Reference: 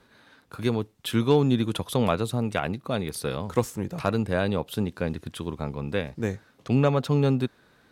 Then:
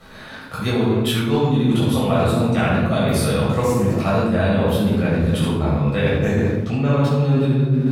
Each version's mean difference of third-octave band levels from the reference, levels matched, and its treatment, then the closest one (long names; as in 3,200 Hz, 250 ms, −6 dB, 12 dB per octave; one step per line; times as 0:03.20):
8.0 dB: rectangular room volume 710 cubic metres, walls mixed, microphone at 6.4 metres
reversed playback
downward compressor 6 to 1, threshold −22 dBFS, peak gain reduction 18.5 dB
reversed playback
level +6.5 dB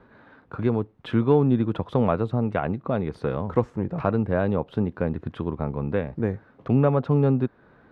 6.0 dB: low-pass filter 1,400 Hz 12 dB per octave
in parallel at +1.5 dB: downward compressor, threshold −33 dBFS, peak gain reduction 16.5 dB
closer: second